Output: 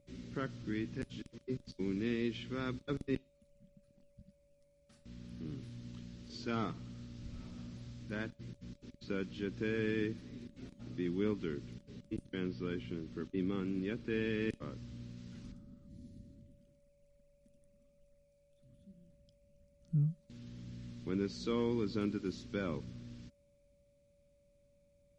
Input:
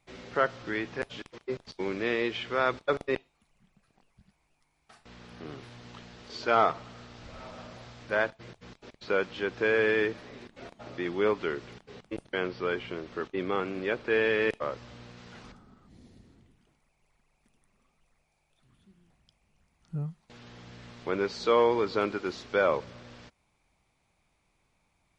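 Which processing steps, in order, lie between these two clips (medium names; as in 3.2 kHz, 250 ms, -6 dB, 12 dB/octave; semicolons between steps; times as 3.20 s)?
whistle 570 Hz -50 dBFS; FFT filter 260 Hz 0 dB, 640 Hz -25 dB, 6.4 kHz -8 dB; trim +2.5 dB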